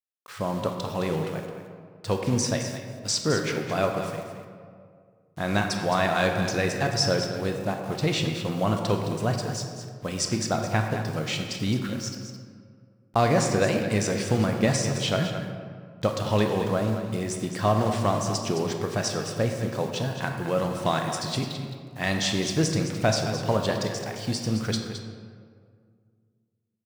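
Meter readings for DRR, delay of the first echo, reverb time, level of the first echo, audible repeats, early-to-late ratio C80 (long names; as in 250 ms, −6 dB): 3.0 dB, 215 ms, 2.0 s, −10.5 dB, 1, 5.0 dB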